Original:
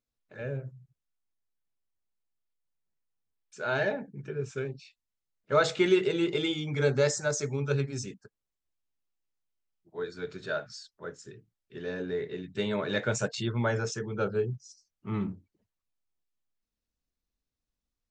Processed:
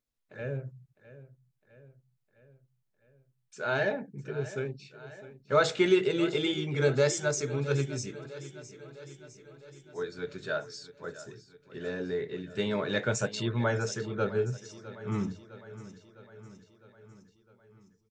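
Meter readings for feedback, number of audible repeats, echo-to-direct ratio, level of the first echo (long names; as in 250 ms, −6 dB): 60%, 5, −14.0 dB, −16.0 dB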